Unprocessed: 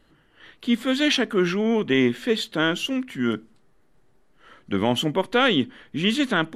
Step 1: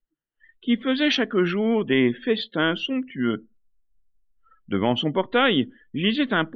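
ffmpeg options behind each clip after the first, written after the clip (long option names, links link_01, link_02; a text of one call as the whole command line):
ffmpeg -i in.wav -af "lowpass=4700,afftdn=noise_reduction=34:noise_floor=-38" out.wav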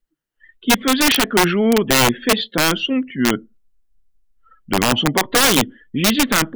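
ffmpeg -i in.wav -af "aeval=exprs='(mod(5.01*val(0)+1,2)-1)/5.01':channel_layout=same,volume=6.5dB" out.wav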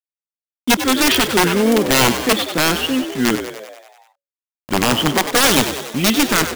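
ffmpeg -i in.wav -filter_complex "[0:a]acrusher=bits=4:mix=0:aa=0.000001,asplit=2[link_01][link_02];[link_02]asplit=8[link_03][link_04][link_05][link_06][link_07][link_08][link_09][link_10];[link_03]adelay=96,afreqshift=70,volume=-10dB[link_11];[link_04]adelay=192,afreqshift=140,volume=-14.2dB[link_12];[link_05]adelay=288,afreqshift=210,volume=-18.3dB[link_13];[link_06]adelay=384,afreqshift=280,volume=-22.5dB[link_14];[link_07]adelay=480,afreqshift=350,volume=-26.6dB[link_15];[link_08]adelay=576,afreqshift=420,volume=-30.8dB[link_16];[link_09]adelay=672,afreqshift=490,volume=-34.9dB[link_17];[link_10]adelay=768,afreqshift=560,volume=-39.1dB[link_18];[link_11][link_12][link_13][link_14][link_15][link_16][link_17][link_18]amix=inputs=8:normalize=0[link_19];[link_01][link_19]amix=inputs=2:normalize=0" out.wav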